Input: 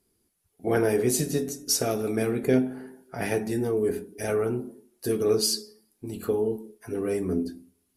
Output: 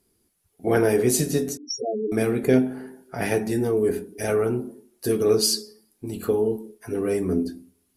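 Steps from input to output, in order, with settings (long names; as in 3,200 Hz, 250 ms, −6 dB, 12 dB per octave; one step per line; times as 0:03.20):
0:01.57–0:02.12: spectral peaks only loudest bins 4
level +3.5 dB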